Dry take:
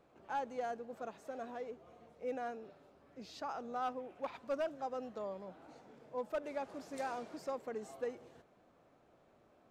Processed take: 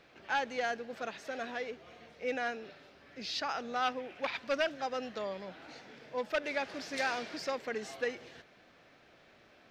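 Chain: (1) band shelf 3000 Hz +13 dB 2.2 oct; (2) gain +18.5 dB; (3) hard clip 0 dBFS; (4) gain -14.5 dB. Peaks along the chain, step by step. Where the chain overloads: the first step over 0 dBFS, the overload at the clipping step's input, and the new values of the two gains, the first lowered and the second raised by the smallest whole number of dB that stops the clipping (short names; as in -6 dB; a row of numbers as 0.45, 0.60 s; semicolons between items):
-22.5, -4.0, -4.0, -18.5 dBFS; no overload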